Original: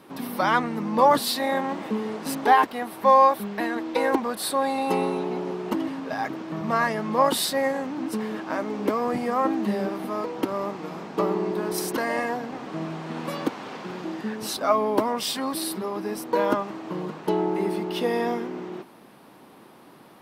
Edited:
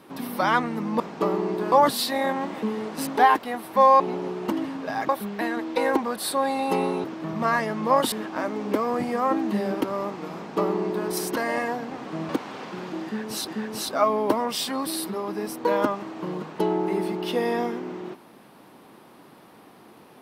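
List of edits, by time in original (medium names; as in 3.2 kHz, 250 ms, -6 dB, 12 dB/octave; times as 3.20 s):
5.23–6.32 s: move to 3.28 s
7.40–8.26 s: delete
9.95–10.42 s: delete
10.97–11.69 s: copy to 1.00 s
12.90–13.41 s: delete
14.16–14.60 s: loop, 2 plays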